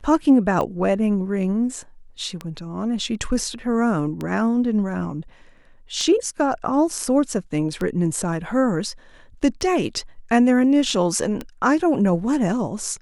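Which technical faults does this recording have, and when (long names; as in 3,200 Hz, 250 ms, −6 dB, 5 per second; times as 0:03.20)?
scratch tick 33 1/3 rpm −14 dBFS
0:10.90: drop-out 2.8 ms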